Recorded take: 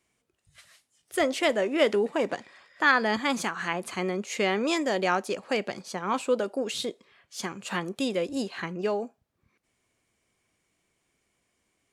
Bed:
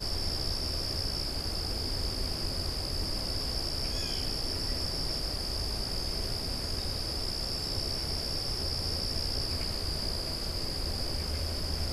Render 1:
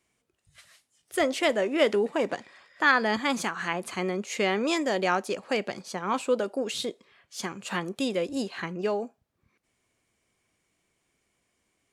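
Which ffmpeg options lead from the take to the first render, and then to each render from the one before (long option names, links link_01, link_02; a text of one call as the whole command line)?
ffmpeg -i in.wav -af anull out.wav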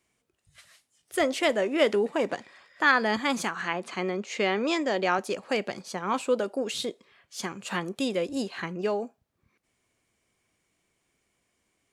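ffmpeg -i in.wav -filter_complex "[0:a]asettb=1/sr,asplit=3[link_01][link_02][link_03];[link_01]atrim=end=3.614[link_04];[link_02]atrim=start=3.61:end=5.19,asetpts=PTS-STARTPTS,afade=type=in:duration=0.004:curve=qsin,afade=type=out:start_time=1.576:duration=0.004:curve=qsin,highpass=160,lowpass=5900[link_05];[link_03]atrim=start=5.186[link_06];[link_04][link_05]acrossfade=duration=0.004:curve1=hsin:curve2=qsin[link_07];[link_07][link_06]acrossfade=duration=0.004:curve1=qsin:curve2=hsin" out.wav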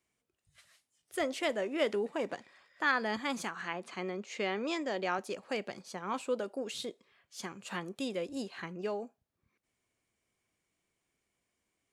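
ffmpeg -i in.wav -af "volume=-8dB" out.wav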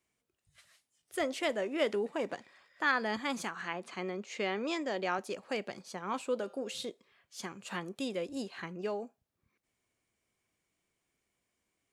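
ffmpeg -i in.wav -filter_complex "[0:a]asettb=1/sr,asplit=3[link_01][link_02][link_03];[link_01]atrim=end=6.314[link_04];[link_02]atrim=start=6.31:end=6.9,asetpts=PTS-STARTPTS,afade=type=in:duration=0.004:curve=qsin,afade=type=out:start_time=0.586:duration=0.004:curve=qsin,bandreject=frequency=173.4:width_type=h:width=4,bandreject=frequency=346.8:width_type=h:width=4,bandreject=frequency=520.2:width_type=h:width=4,bandreject=frequency=693.6:width_type=h:width=4,bandreject=frequency=867:width_type=h:width=4,bandreject=frequency=1040.4:width_type=h:width=4,bandreject=frequency=1213.8:width_type=h:width=4,bandreject=frequency=1387.2:width_type=h:width=4,bandreject=frequency=1560.6:width_type=h:width=4,bandreject=frequency=1734:width_type=h:width=4,bandreject=frequency=1907.4:width_type=h:width=4,bandreject=frequency=2080.8:width_type=h:width=4,bandreject=frequency=2254.2:width_type=h:width=4,bandreject=frequency=2427.6:width_type=h:width=4,bandreject=frequency=2601:width_type=h:width=4,bandreject=frequency=2774.4:width_type=h:width=4,bandreject=frequency=2947.8:width_type=h:width=4,bandreject=frequency=3121.2:width_type=h:width=4,bandreject=frequency=3294.6:width_type=h:width=4,bandreject=frequency=3468:width_type=h:width=4,bandreject=frequency=3641.4:width_type=h:width=4,bandreject=frequency=3814.8:width_type=h:width=4,bandreject=frequency=3988.2:width_type=h:width=4,bandreject=frequency=4161.6:width_type=h:width=4,bandreject=frequency=4335:width_type=h:width=4,bandreject=frequency=4508.4:width_type=h:width=4,bandreject=frequency=4681.8:width_type=h:width=4,bandreject=frequency=4855.2:width_type=h:width=4,bandreject=frequency=5028.6:width_type=h:width=4,bandreject=frequency=5202:width_type=h:width=4,bandreject=frequency=5375.4:width_type=h:width=4,bandreject=frequency=5548.8:width_type=h:width=4,bandreject=frequency=5722.2:width_type=h:width=4,bandreject=frequency=5895.6:width_type=h:width=4,bandreject=frequency=6069:width_type=h:width=4,bandreject=frequency=6242.4:width_type=h:width=4,bandreject=frequency=6415.8:width_type=h:width=4,bandreject=frequency=6589.2:width_type=h:width=4[link_05];[link_03]atrim=start=6.896[link_06];[link_04][link_05]acrossfade=duration=0.004:curve1=hsin:curve2=qsin[link_07];[link_07][link_06]acrossfade=duration=0.004:curve1=qsin:curve2=hsin" out.wav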